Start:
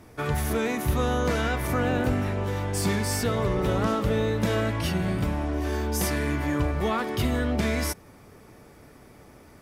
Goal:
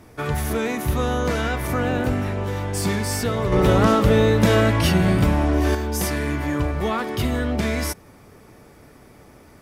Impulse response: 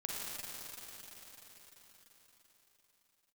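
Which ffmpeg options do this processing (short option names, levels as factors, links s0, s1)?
-filter_complex "[0:a]asettb=1/sr,asplit=3[s0][s1][s2];[s0]atrim=end=3.524[s3];[s1]atrim=start=3.52:end=5.75,asetpts=PTS-STARTPTS,afade=t=in:d=0.004:c=qsin,afade=t=out:st=2.226:d=0.004:c=qsin,acontrast=59[s4];[s2]atrim=start=5.746[s5];[s3][s4]acrossfade=d=0.004:c1=hsin:c2=qsin[s6];[s6][s5]acrossfade=d=0.004:c1=qsin:c2=hsin,volume=1.33"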